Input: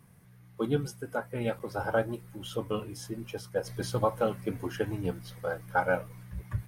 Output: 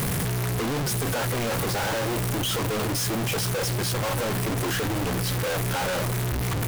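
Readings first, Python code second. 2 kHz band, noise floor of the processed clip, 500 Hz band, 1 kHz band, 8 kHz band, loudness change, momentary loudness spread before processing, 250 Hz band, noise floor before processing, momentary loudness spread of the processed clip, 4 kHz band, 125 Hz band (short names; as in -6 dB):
+7.0 dB, -26 dBFS, +2.5 dB, +4.5 dB, +18.5 dB, +7.0 dB, 10 LU, +6.5 dB, -56 dBFS, 1 LU, +16.0 dB, +10.5 dB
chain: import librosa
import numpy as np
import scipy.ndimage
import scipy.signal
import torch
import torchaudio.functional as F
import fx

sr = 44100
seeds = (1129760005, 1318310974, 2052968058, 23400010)

y = np.sign(x) * np.sqrt(np.mean(np.square(x)))
y = y * 10.0 ** (7.0 / 20.0)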